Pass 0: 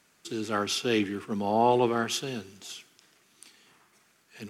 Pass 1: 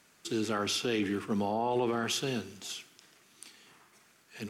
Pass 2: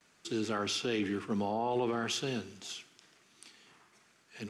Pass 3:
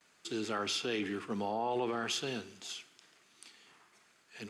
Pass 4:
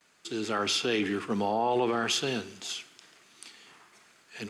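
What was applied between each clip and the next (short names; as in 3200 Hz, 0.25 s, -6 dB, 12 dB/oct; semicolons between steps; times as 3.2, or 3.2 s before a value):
limiter -23 dBFS, peak gain reduction 11.5 dB; reverb RT60 0.60 s, pre-delay 31 ms, DRR 18.5 dB; gain +1.5 dB
gate with hold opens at -55 dBFS; LPF 8300 Hz 12 dB/oct; gain -2 dB
low shelf 270 Hz -7.5 dB; notch 5700 Hz, Q 18
AGC gain up to 5 dB; gain +2 dB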